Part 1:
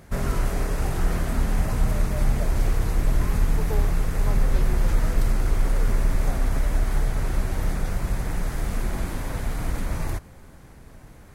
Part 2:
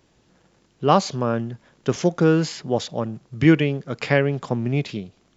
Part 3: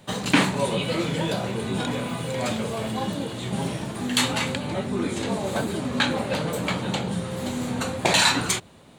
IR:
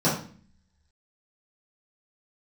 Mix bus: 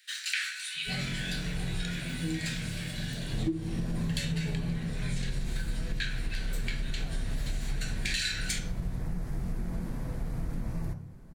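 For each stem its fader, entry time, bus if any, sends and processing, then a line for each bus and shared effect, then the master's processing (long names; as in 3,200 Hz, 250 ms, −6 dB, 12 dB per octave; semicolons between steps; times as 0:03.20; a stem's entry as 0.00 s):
0:03.21 −17 dB → 0:03.42 −4.5 dB → 0:04.73 −4.5 dB → 0:04.95 −14.5 dB, 0.75 s, send −20 dB, low-shelf EQ 290 Hz +9 dB; automatic ducking −11 dB, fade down 0.30 s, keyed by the second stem
−11.0 dB, 0.00 s, send −12.5 dB, mains-hum notches 60/120/180/240/300/360/420/480 Hz; every bin expanded away from the loudest bin 4 to 1
−5.0 dB, 0.00 s, send −12 dB, Butterworth high-pass 1,500 Hz 72 dB per octave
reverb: on, RT60 0.45 s, pre-delay 3 ms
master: downward compressor 16 to 1, threshold −27 dBFS, peak gain reduction 20.5 dB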